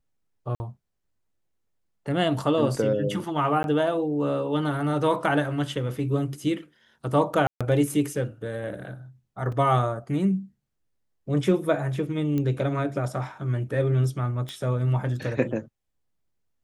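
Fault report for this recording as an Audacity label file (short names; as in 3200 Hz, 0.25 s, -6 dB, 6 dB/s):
0.550000	0.600000	gap 50 ms
3.630000	3.640000	gap 11 ms
7.470000	7.610000	gap 0.136 s
9.520000	9.520000	gap 3.8 ms
12.380000	12.380000	pop -17 dBFS
14.490000	14.490000	pop -20 dBFS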